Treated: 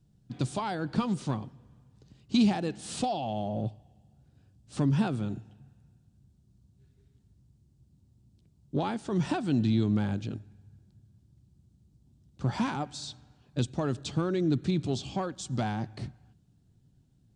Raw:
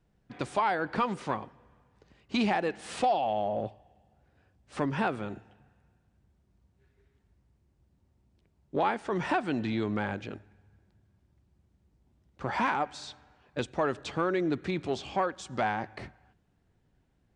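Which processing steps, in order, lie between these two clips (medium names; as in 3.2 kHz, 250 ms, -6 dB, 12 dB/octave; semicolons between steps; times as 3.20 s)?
ten-band graphic EQ 125 Hz +11 dB, 250 Hz +4 dB, 500 Hz -5 dB, 1 kHz -5 dB, 2 kHz -10 dB, 4 kHz +4 dB, 8 kHz +6 dB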